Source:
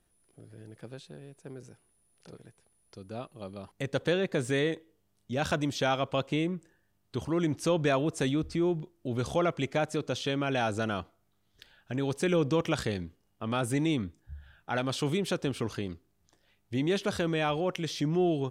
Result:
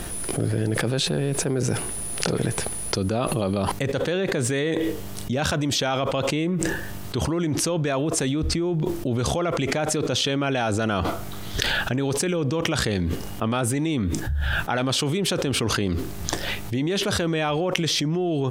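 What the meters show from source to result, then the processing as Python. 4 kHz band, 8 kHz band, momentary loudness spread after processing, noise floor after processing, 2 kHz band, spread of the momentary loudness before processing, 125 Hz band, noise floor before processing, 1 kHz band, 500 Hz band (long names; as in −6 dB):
+11.5 dB, +16.5 dB, 5 LU, −32 dBFS, +8.0 dB, 18 LU, +8.5 dB, −72 dBFS, +6.0 dB, +5.5 dB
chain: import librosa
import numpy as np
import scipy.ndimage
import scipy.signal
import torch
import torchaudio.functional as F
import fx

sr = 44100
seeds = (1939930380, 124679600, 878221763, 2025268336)

y = fx.env_flatten(x, sr, amount_pct=100)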